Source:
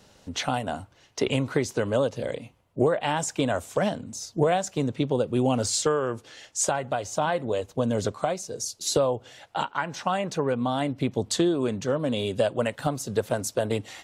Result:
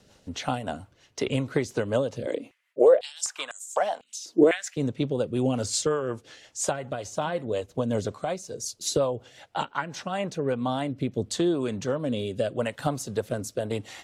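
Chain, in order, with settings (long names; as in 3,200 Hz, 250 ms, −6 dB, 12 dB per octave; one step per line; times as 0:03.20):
rotating-speaker cabinet horn 5.5 Hz, later 0.85 Hz, at 0:09.78
0:02.26–0:04.77: high-pass on a step sequencer 4 Hz 320–7,200 Hz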